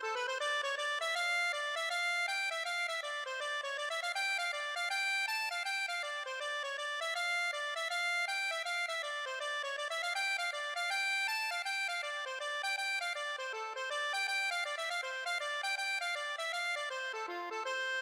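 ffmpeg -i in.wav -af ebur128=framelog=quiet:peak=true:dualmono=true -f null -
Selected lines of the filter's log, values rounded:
Integrated loudness:
  I:         -31.9 LUFS
  Threshold: -41.9 LUFS
Loudness range:
  LRA:         1.2 LU
  Threshold: -51.9 LUFS
  LRA low:   -32.5 LUFS
  LRA high:  -31.3 LUFS
True peak:
  Peak:      -25.1 dBFS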